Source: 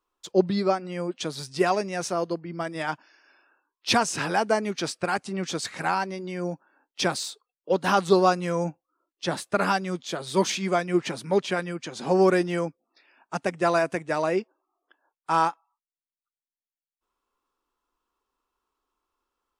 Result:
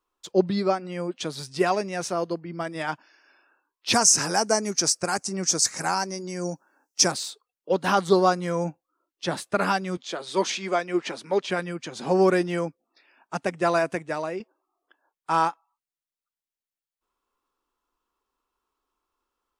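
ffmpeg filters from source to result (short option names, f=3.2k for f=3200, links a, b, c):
-filter_complex "[0:a]asettb=1/sr,asplit=3[a][b][c];[a]atrim=end=3.934[d];[b]atrim=start=3.93:end=7.12,asetpts=PTS-STARTPTS,afade=t=in:d=0.004:c=qsin,afade=t=out:st=3.186:d=0.004:c=qsin,highshelf=f=4.5k:t=q:w=3:g=9.5[e];[c]atrim=start=7.116[f];[d][e]acrossfade=d=0.004:c1=hsin:c2=qsin[g];[g][f]acrossfade=d=0.004:c1=qsin:c2=hsin,asettb=1/sr,asplit=3[h][i][j];[h]atrim=end=7.954[k];[i]atrim=start=7.95:end=8.53,asetpts=PTS-STARTPTS,afade=t=in:d=0.004:c=qsin,afade=t=out:st=0.576:d=0.004:c=qsin,bandreject=f=2.6k:w=7.4[l];[j]atrim=start=8.526[m];[k][l]acrossfade=d=0.004:c1=hsin:c2=qsin[n];[n][m]acrossfade=d=0.004:c1=qsin:c2=hsin,asettb=1/sr,asplit=3[o][p][q];[o]atrim=end=9.974[r];[p]atrim=start=9.97:end=11.5,asetpts=PTS-STARTPTS,afade=t=in:d=0.004:c=qsin,afade=t=out:st=1.526:d=0.004:c=qsin,highpass=290,lowpass=7.7k[s];[q]atrim=start=11.496[t];[r][s]acrossfade=d=0.004:c1=hsin:c2=qsin[u];[u][t]acrossfade=d=0.004:c1=qsin:c2=hsin,asplit=2[v][w];[v]atrim=end=14.4,asetpts=PTS-STARTPTS,afade=t=out:st=13.94:d=0.46:silence=0.354813[x];[w]atrim=start=14.4,asetpts=PTS-STARTPTS,afade=t=in:d=0.004:c=hsin:silence=0.354813[y];[x][y]concat=n=2:v=0:a=1"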